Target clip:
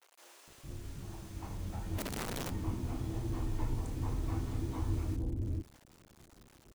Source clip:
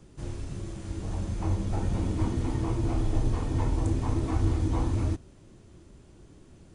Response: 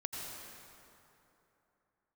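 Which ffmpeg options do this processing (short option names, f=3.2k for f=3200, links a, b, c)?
-filter_complex "[0:a]acrusher=bits=7:mix=0:aa=0.000001,acrossover=split=550[a][b];[a]adelay=460[c];[c][b]amix=inputs=2:normalize=0,asplit=3[d][e][f];[d]afade=t=out:st=1.97:d=0.02[g];[e]aeval=exprs='(mod(16.8*val(0)+1,2)-1)/16.8':c=same,afade=t=in:st=1.97:d=0.02,afade=t=out:st=2.49:d=0.02[h];[f]afade=t=in:st=2.49:d=0.02[i];[g][h][i]amix=inputs=3:normalize=0,volume=-8.5dB"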